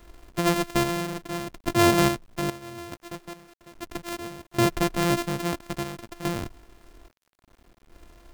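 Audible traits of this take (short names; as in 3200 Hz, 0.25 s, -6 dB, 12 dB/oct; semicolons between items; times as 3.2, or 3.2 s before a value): a buzz of ramps at a fixed pitch in blocks of 128 samples; random-step tremolo 2.4 Hz, depth 95%; a quantiser's noise floor 10-bit, dither none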